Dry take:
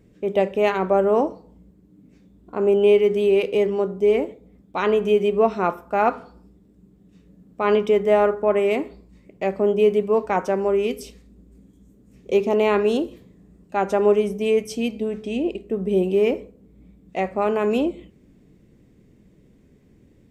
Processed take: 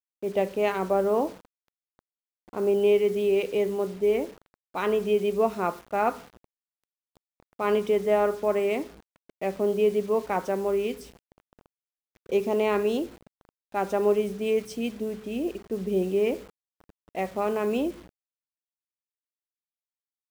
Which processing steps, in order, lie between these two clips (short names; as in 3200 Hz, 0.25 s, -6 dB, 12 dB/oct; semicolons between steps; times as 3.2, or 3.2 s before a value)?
bit-crush 7-bit; mismatched tape noise reduction decoder only; gain -5.5 dB